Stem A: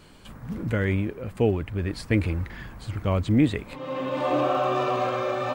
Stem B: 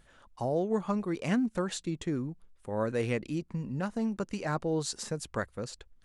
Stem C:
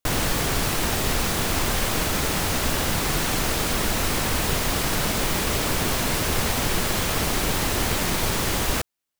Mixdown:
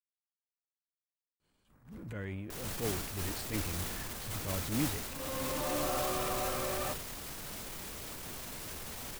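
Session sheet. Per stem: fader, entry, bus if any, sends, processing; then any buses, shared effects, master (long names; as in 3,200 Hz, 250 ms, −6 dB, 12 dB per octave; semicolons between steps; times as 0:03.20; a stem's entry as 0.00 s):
+0.5 dB, 1.40 s, no send, downward compressor 3 to 1, threshold −33 dBFS, peak gain reduction 13.5 dB
muted
−6.0 dB, 2.45 s, no send, brickwall limiter −21 dBFS, peak gain reduction 10.5 dB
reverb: not used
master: high-shelf EQ 6,400 Hz +7 dB; transient designer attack −9 dB, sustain +4 dB; expander for the loud parts 2.5 to 1, over −45 dBFS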